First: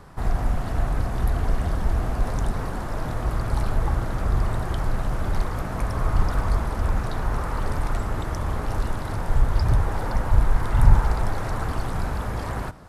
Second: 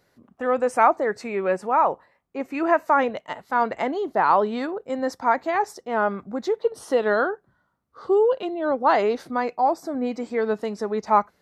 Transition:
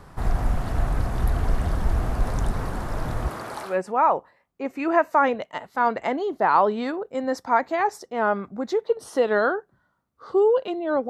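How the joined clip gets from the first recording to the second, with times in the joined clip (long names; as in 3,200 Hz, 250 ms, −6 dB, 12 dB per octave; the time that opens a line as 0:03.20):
first
0:03.27–0:03.79: high-pass filter 200 Hz → 730 Hz
0:03.71: continue with second from 0:01.46, crossfade 0.16 s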